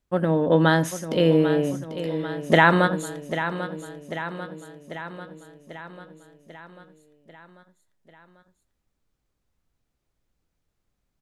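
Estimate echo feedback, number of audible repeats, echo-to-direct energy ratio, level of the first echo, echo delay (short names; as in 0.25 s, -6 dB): 60%, 6, -9.0 dB, -11.0 dB, 0.793 s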